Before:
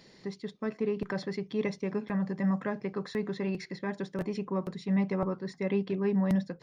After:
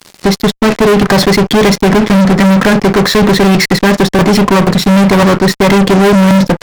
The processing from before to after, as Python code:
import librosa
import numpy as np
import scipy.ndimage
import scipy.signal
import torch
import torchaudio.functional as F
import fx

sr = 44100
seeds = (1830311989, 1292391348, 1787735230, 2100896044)

y = fx.fuzz(x, sr, gain_db=43.0, gate_db=-51.0)
y = F.gain(torch.from_numpy(y), 8.0).numpy()